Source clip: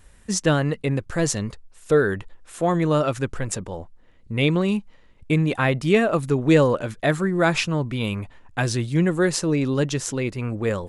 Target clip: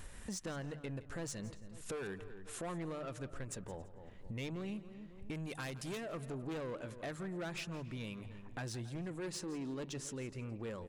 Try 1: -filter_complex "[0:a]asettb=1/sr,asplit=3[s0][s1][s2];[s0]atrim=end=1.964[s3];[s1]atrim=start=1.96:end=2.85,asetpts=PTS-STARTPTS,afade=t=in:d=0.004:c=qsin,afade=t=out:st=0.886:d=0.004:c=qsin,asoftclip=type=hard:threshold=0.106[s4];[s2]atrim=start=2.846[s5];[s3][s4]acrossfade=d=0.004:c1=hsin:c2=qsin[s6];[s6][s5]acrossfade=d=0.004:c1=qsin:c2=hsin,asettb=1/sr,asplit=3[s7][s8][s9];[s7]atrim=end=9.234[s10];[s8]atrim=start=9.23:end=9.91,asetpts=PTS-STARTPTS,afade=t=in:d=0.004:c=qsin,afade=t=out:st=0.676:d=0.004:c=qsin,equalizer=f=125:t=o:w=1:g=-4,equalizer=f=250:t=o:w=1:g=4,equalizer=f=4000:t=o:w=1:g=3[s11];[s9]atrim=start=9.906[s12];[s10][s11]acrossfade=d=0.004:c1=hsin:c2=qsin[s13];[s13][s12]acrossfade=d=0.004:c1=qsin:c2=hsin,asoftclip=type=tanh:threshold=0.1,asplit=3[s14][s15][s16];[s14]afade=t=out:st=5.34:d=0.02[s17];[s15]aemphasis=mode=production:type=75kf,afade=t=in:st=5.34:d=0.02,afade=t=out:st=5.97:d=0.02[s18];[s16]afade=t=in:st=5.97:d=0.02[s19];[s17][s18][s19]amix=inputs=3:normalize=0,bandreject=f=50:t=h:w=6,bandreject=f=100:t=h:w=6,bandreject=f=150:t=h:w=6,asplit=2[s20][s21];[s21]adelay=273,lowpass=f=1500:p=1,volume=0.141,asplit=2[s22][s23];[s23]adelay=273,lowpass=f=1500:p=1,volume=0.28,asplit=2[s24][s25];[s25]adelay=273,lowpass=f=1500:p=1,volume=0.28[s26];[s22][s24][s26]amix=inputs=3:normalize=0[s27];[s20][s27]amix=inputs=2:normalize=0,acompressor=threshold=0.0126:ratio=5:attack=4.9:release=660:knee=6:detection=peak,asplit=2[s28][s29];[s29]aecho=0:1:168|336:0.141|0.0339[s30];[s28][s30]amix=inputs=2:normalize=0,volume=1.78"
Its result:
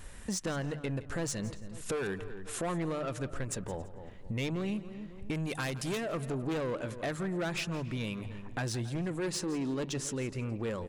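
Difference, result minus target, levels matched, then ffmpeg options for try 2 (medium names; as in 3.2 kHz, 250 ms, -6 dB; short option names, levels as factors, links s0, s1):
compression: peak gain reduction -8 dB
-filter_complex "[0:a]asettb=1/sr,asplit=3[s0][s1][s2];[s0]atrim=end=1.964[s3];[s1]atrim=start=1.96:end=2.85,asetpts=PTS-STARTPTS,afade=t=in:d=0.004:c=qsin,afade=t=out:st=0.886:d=0.004:c=qsin,asoftclip=type=hard:threshold=0.106[s4];[s2]atrim=start=2.846[s5];[s3][s4]acrossfade=d=0.004:c1=hsin:c2=qsin[s6];[s6][s5]acrossfade=d=0.004:c1=qsin:c2=hsin,asettb=1/sr,asplit=3[s7][s8][s9];[s7]atrim=end=9.234[s10];[s8]atrim=start=9.23:end=9.91,asetpts=PTS-STARTPTS,afade=t=in:d=0.004:c=qsin,afade=t=out:st=0.676:d=0.004:c=qsin,equalizer=f=125:t=o:w=1:g=-4,equalizer=f=250:t=o:w=1:g=4,equalizer=f=4000:t=o:w=1:g=3[s11];[s9]atrim=start=9.906[s12];[s10][s11]acrossfade=d=0.004:c1=hsin:c2=qsin[s13];[s13][s12]acrossfade=d=0.004:c1=qsin:c2=hsin,asoftclip=type=tanh:threshold=0.1,asplit=3[s14][s15][s16];[s14]afade=t=out:st=5.34:d=0.02[s17];[s15]aemphasis=mode=production:type=75kf,afade=t=in:st=5.34:d=0.02,afade=t=out:st=5.97:d=0.02[s18];[s16]afade=t=in:st=5.97:d=0.02[s19];[s17][s18][s19]amix=inputs=3:normalize=0,bandreject=f=50:t=h:w=6,bandreject=f=100:t=h:w=6,bandreject=f=150:t=h:w=6,asplit=2[s20][s21];[s21]adelay=273,lowpass=f=1500:p=1,volume=0.141,asplit=2[s22][s23];[s23]adelay=273,lowpass=f=1500:p=1,volume=0.28,asplit=2[s24][s25];[s25]adelay=273,lowpass=f=1500:p=1,volume=0.28[s26];[s22][s24][s26]amix=inputs=3:normalize=0[s27];[s20][s27]amix=inputs=2:normalize=0,acompressor=threshold=0.00398:ratio=5:attack=4.9:release=660:knee=6:detection=peak,asplit=2[s28][s29];[s29]aecho=0:1:168|336:0.141|0.0339[s30];[s28][s30]amix=inputs=2:normalize=0,volume=1.78"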